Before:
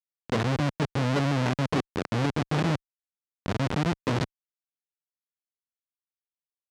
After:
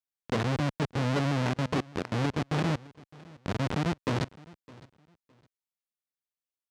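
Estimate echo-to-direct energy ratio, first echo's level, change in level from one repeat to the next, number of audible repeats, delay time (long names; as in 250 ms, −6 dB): −22.0 dB, −22.0 dB, −12.5 dB, 2, 611 ms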